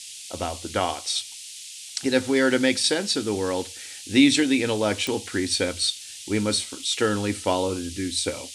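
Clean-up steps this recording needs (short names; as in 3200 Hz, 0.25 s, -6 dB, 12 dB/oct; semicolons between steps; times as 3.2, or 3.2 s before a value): de-click; noise print and reduce 29 dB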